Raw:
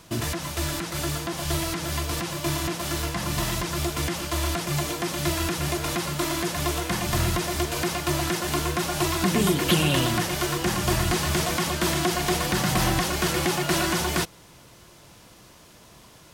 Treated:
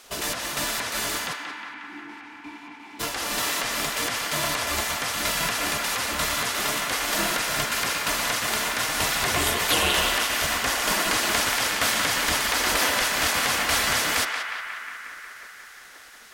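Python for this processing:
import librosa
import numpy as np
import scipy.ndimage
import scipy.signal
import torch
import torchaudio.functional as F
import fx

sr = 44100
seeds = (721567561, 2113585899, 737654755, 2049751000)

p1 = fx.cheby_harmonics(x, sr, harmonics=(2,), levels_db=(-25,), full_scale_db=-8.0)
p2 = fx.spec_gate(p1, sr, threshold_db=-10, keep='weak')
p3 = fx.vowel_filter(p2, sr, vowel='u', at=(1.32, 2.99), fade=0.02)
p4 = p3 + fx.echo_banded(p3, sr, ms=180, feedback_pct=80, hz=1600.0, wet_db=-3.5, dry=0)
y = F.gain(torch.from_numpy(p4), 3.5).numpy()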